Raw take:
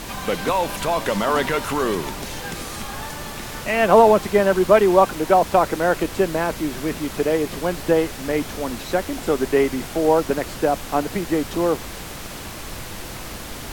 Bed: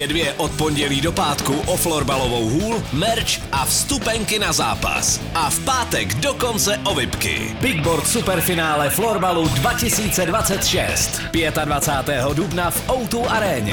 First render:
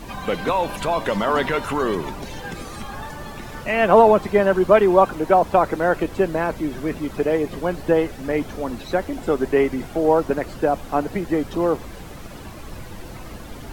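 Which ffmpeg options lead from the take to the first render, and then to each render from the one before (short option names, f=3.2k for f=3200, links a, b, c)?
-af "afftdn=nr=11:nf=-34"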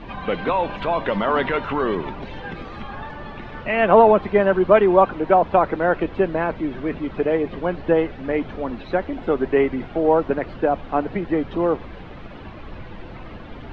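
-af "lowpass=f=3.4k:w=0.5412,lowpass=f=3.4k:w=1.3066,bandreject=f=50:t=h:w=6,bandreject=f=100:t=h:w=6,bandreject=f=150:t=h:w=6"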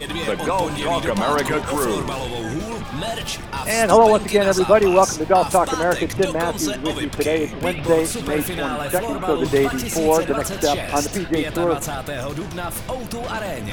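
-filter_complex "[1:a]volume=-8dB[a];[0:a][a]amix=inputs=2:normalize=0"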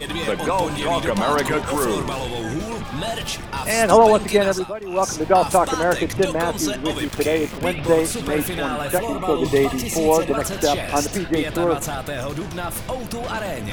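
-filter_complex "[0:a]asettb=1/sr,asplit=3[a][b][c];[a]atrim=end=6.984[d];[b]atrim=start=6.98:end=7.58,asetpts=PTS-STARTPTS,afade=t=in:d=0.004:c=qsin,afade=t=out:st=0.596:d=0.004:c=qsin,aeval=exprs='val(0)*gte(abs(val(0)),0.0299)':c=same[e];[c]atrim=start=7.576[f];[d][e]acrossfade=d=0.004:c1=hsin:c2=qsin[g];[g][f]acrossfade=d=0.004:c1=qsin:c2=hsin,asettb=1/sr,asplit=3[h][i][j];[h]atrim=end=8.984[k];[i]atrim=start=8.98:end=10.34,asetpts=PTS-STARTPTS,afade=t=in:d=0.004:c=qsin,afade=t=out:st=1.356:d=0.004:c=qsin,asuperstop=centerf=1500:order=20:qfactor=4.7[l];[j]atrim=start=10.336[m];[k][l]acrossfade=d=0.004:c1=hsin:c2=qsin[n];[n][m]acrossfade=d=0.004:c1=qsin:c2=hsin,asplit=3[o][p][q];[o]atrim=end=4.73,asetpts=PTS-STARTPTS,afade=t=out:st=4.4:d=0.33:silence=0.141254[r];[p]atrim=start=4.73:end=4.86,asetpts=PTS-STARTPTS,volume=-17dB[s];[q]atrim=start=4.86,asetpts=PTS-STARTPTS,afade=t=in:d=0.33:silence=0.141254[t];[r][s][t]concat=n=3:v=0:a=1"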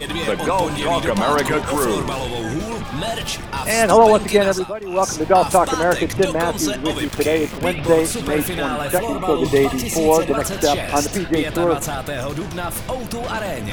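-af "volume=2dB,alimiter=limit=-2dB:level=0:latency=1"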